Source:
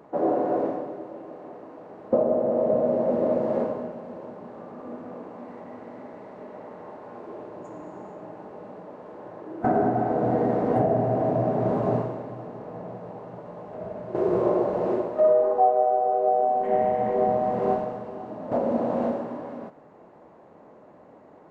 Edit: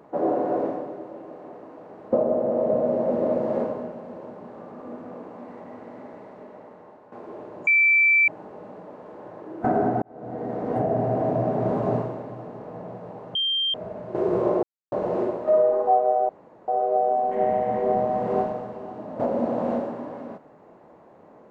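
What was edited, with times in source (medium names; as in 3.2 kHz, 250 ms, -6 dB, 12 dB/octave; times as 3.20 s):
6.13–7.12 s: fade out, to -10.5 dB
7.67–8.28 s: bleep 2.33 kHz -14.5 dBFS
10.02–11.06 s: fade in
13.35–13.74 s: bleep 3.17 kHz -21 dBFS
14.63 s: insert silence 0.29 s
16.00 s: insert room tone 0.39 s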